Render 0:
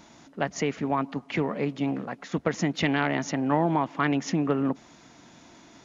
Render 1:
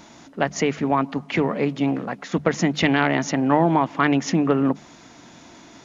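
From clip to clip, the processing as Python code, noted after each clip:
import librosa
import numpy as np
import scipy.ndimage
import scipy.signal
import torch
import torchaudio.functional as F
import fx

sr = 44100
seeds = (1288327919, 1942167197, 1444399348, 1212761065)

y = fx.hum_notches(x, sr, base_hz=50, count=4)
y = F.gain(torch.from_numpy(y), 6.0).numpy()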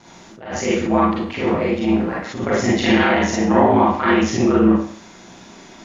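y = x * np.sin(2.0 * np.pi * 56.0 * np.arange(len(x)) / sr)
y = fx.rev_schroeder(y, sr, rt60_s=0.49, comb_ms=33, drr_db=-6.5)
y = fx.attack_slew(y, sr, db_per_s=100.0)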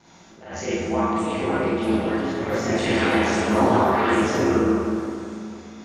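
y = fx.echo_pitch(x, sr, ms=739, semitones=4, count=3, db_per_echo=-6.0)
y = fx.rev_plate(y, sr, seeds[0], rt60_s=2.7, hf_ratio=0.65, predelay_ms=0, drr_db=0.0)
y = F.gain(torch.from_numpy(y), -8.0).numpy()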